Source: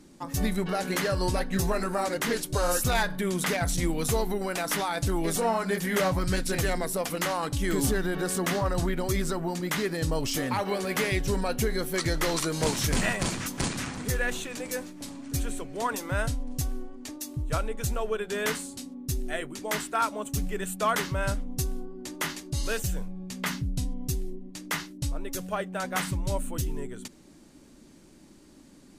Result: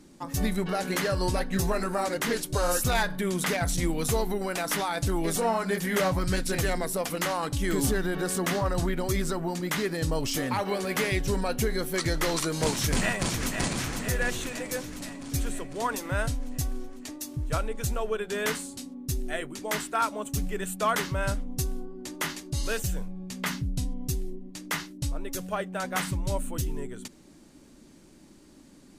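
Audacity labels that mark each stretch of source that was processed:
12.790000	13.490000	delay throw 500 ms, feedback 65%, level −6.5 dB

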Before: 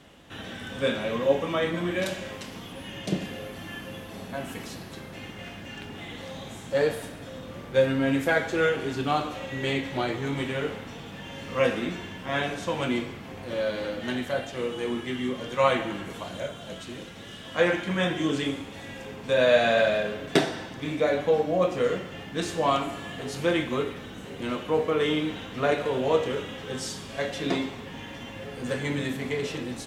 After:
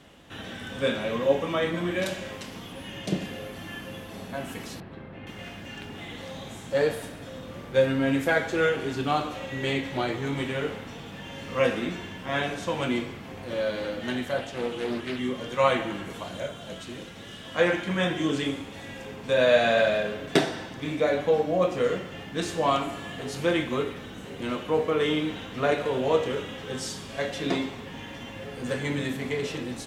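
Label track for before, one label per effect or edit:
4.800000	5.270000	high-frequency loss of the air 500 metres
14.380000	15.190000	highs frequency-modulated by the lows depth 0.48 ms

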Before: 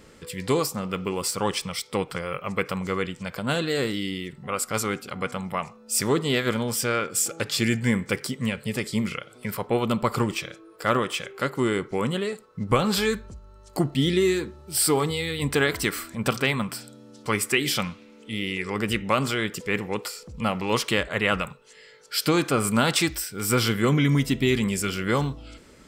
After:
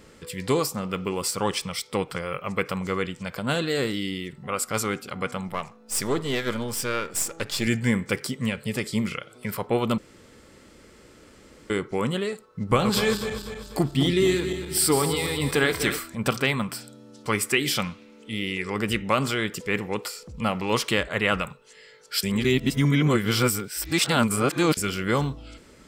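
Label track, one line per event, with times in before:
5.480000	7.670000	gain on one half-wave negative side −7 dB
9.980000	11.700000	fill with room tone
12.440000	15.990000	feedback delay that plays each chunk backwards 123 ms, feedback 68%, level −8.5 dB
22.230000	24.770000	reverse

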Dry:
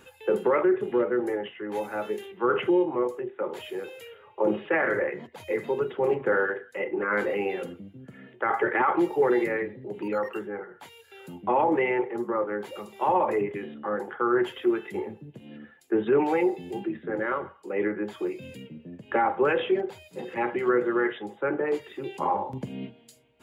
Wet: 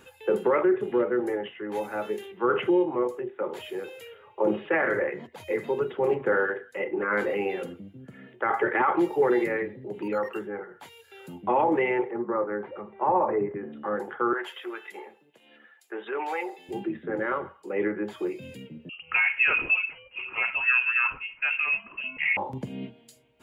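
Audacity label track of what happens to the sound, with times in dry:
12.100000	13.720000	low-pass filter 2,200 Hz → 1,600 Hz 24 dB per octave
14.330000	16.690000	high-pass filter 770 Hz
18.890000	22.370000	voice inversion scrambler carrier 3,000 Hz

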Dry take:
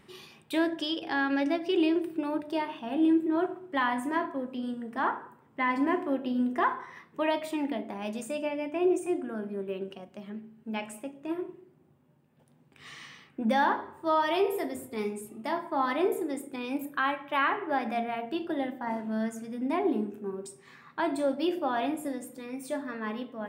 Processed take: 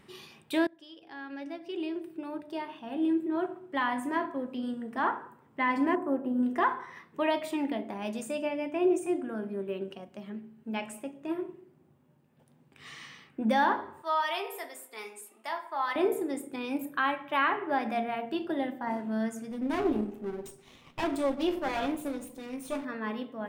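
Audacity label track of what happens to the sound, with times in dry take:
0.670000	4.620000	fade in, from −24 dB
5.950000	6.430000	drawn EQ curve 1,200 Hz 0 dB, 5,400 Hz −28 dB, 7,700 Hz −2 dB
14.020000	15.960000	high-pass filter 850 Hz
19.510000	22.850000	lower of the sound and its delayed copy delay 0.32 ms

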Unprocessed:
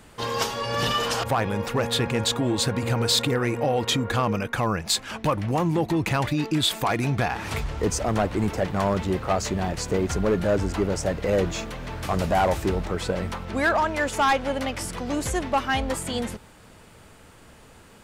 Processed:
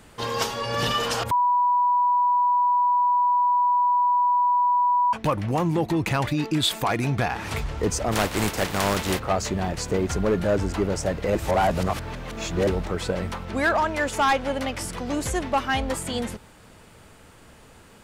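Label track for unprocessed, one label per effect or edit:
1.310000	5.130000	beep over 980 Hz −17 dBFS
8.110000	9.180000	compressing power law on the bin magnitudes exponent 0.56
11.350000	12.670000	reverse

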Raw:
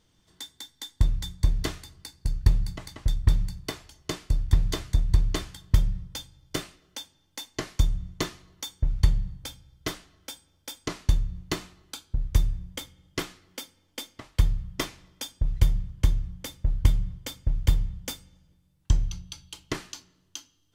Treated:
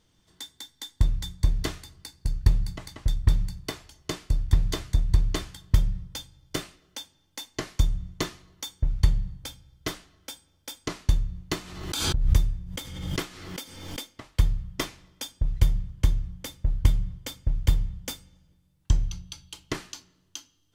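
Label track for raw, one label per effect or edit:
11.560000	14.090000	background raised ahead of every attack at most 46 dB per second

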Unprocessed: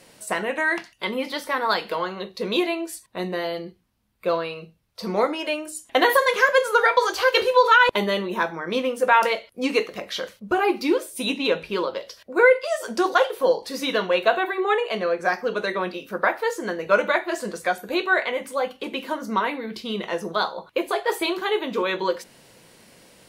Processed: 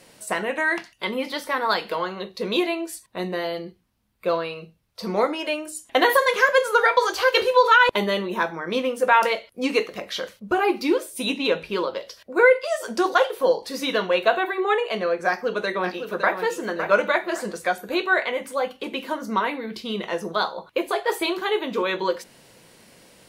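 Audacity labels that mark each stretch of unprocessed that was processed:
15.270000	16.370000	delay throw 560 ms, feedback 30%, level −8 dB

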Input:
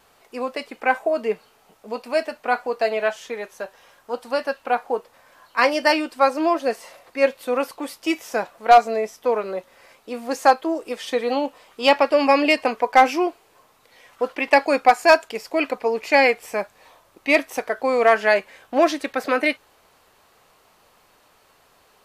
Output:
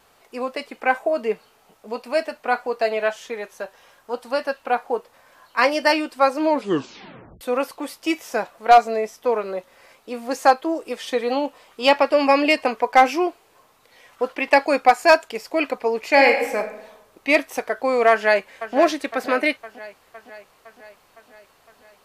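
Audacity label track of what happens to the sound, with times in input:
6.410000	6.410000	tape stop 1.00 s
16.110000	16.570000	thrown reverb, RT60 0.96 s, DRR 3.5 dB
18.100000	18.760000	delay throw 510 ms, feedback 65%, level −13 dB

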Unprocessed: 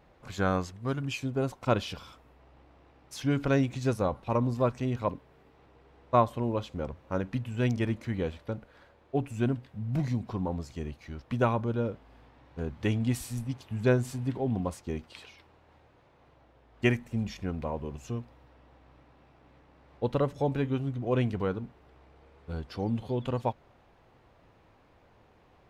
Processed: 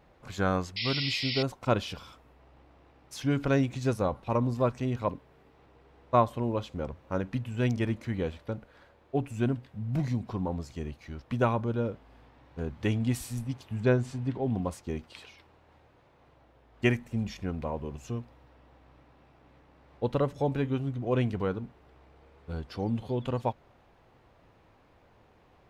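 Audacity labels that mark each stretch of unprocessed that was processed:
0.760000	1.430000	sound drawn into the spectrogram noise 1,900–5,500 Hz −33 dBFS
13.800000	14.430000	high-frequency loss of the air 69 metres

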